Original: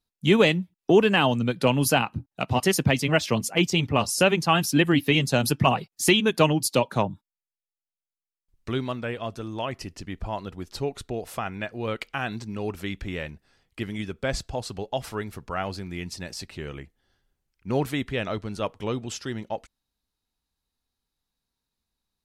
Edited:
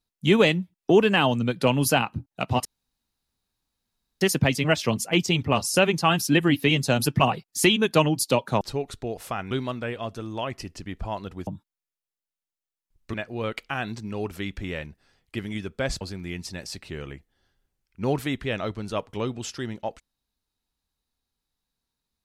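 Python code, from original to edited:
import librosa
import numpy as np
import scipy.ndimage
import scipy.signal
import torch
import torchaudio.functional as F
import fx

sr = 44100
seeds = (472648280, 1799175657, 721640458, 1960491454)

y = fx.edit(x, sr, fx.insert_room_tone(at_s=2.65, length_s=1.56),
    fx.swap(start_s=7.05, length_s=1.67, other_s=10.68, other_length_s=0.9),
    fx.cut(start_s=14.45, length_s=1.23), tone=tone)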